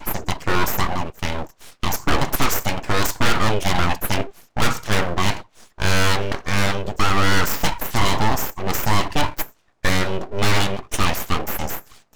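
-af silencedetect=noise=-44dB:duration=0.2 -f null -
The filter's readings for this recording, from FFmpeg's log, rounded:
silence_start: 9.52
silence_end: 9.83 | silence_duration: 0.32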